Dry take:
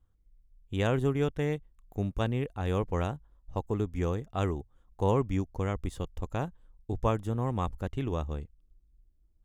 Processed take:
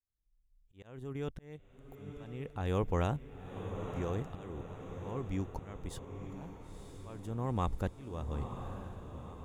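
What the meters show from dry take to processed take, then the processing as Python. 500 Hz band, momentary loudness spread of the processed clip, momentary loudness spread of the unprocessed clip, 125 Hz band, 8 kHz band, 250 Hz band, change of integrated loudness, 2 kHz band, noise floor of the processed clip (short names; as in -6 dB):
-8.5 dB, 16 LU, 11 LU, -7.0 dB, n/a, -7.5 dB, -7.5 dB, -8.5 dB, -70 dBFS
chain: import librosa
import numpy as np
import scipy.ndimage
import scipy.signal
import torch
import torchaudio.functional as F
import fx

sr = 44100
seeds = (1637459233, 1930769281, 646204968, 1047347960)

p1 = fx.fade_in_head(x, sr, length_s=2.97)
p2 = fx.over_compress(p1, sr, threshold_db=-38.0, ratio=-1.0)
p3 = p1 + (p2 * librosa.db_to_amplitude(-3.0))
p4 = fx.auto_swell(p3, sr, attack_ms=637.0)
p5 = fx.echo_diffused(p4, sr, ms=968, feedback_pct=52, wet_db=-8.0)
y = p5 * librosa.db_to_amplitude(-2.5)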